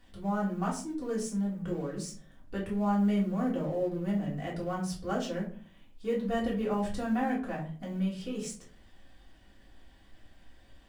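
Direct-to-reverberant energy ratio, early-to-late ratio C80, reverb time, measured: -5.5 dB, 13.0 dB, 0.40 s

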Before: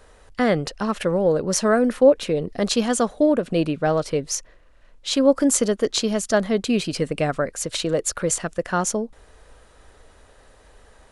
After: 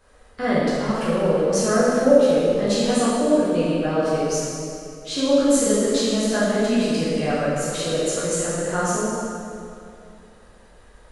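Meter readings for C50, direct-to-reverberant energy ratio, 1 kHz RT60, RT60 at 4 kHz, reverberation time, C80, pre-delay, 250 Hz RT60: -3.5 dB, -10.5 dB, 2.5 s, 2.0 s, 2.6 s, -1.5 dB, 7 ms, 2.9 s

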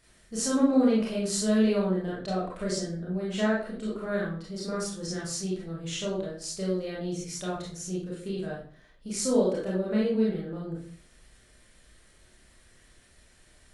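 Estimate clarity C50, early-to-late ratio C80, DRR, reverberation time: 3.0 dB, 8.5 dB, -6.0 dB, 0.50 s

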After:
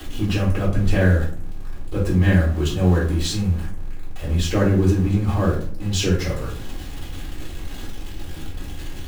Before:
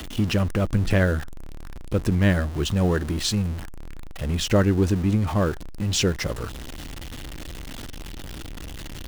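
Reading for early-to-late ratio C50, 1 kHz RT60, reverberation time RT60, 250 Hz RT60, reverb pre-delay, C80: 6.0 dB, 0.45 s, 0.50 s, 0.80 s, 3 ms, 10.5 dB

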